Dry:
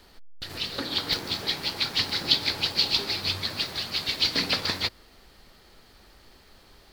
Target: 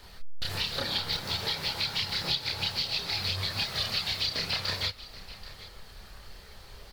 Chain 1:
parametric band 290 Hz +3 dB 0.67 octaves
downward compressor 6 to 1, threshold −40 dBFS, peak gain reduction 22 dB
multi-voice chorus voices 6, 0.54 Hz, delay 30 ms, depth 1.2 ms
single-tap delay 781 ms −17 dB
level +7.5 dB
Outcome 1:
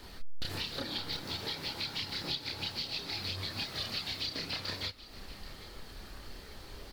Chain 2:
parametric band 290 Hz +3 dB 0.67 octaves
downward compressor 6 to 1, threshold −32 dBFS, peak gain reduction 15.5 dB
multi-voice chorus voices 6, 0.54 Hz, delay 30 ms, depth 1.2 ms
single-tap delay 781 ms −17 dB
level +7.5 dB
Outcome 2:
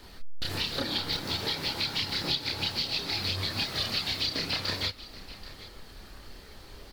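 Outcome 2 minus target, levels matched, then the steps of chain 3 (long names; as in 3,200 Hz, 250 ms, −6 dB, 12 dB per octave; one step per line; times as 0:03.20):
250 Hz band +6.0 dB
parametric band 290 Hz −9 dB 0.67 octaves
downward compressor 6 to 1, threshold −32 dBFS, peak gain reduction 15.5 dB
multi-voice chorus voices 6, 0.54 Hz, delay 30 ms, depth 1.2 ms
single-tap delay 781 ms −17 dB
level +7.5 dB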